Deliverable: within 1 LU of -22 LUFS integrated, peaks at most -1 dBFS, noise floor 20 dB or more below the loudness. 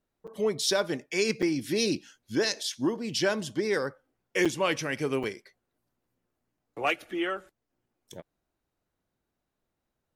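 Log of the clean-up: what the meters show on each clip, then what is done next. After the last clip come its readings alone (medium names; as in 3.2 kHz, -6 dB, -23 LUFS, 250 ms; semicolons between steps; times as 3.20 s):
dropouts 4; longest dropout 6.2 ms; loudness -29.0 LUFS; peak level -11.5 dBFS; loudness target -22.0 LUFS
-> interpolate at 0.27/1.42/4.45/5.23 s, 6.2 ms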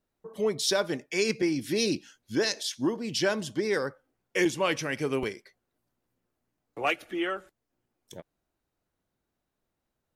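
dropouts 0; loudness -29.0 LUFS; peak level -11.5 dBFS; loudness target -22.0 LUFS
-> trim +7 dB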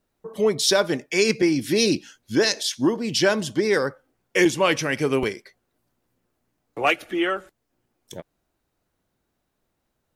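loudness -22.0 LUFS; peak level -4.5 dBFS; noise floor -76 dBFS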